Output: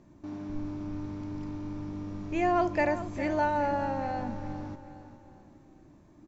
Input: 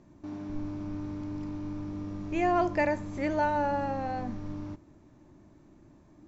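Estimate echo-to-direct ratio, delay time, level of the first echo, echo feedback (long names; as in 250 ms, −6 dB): −12.0 dB, 408 ms, −13.0 dB, 43%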